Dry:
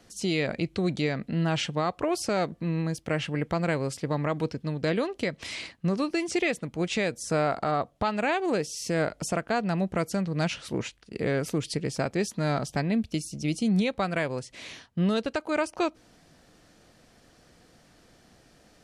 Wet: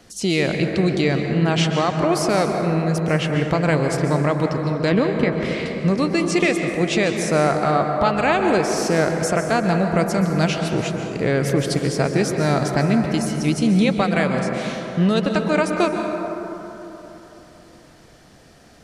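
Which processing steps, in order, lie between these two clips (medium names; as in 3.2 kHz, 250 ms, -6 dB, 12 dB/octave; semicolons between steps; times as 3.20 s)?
4.92–5.66 s: tone controls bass +7 dB, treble -13 dB; plate-style reverb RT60 3.6 s, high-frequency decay 0.3×, pre-delay 115 ms, DRR 3.5 dB; trim +7 dB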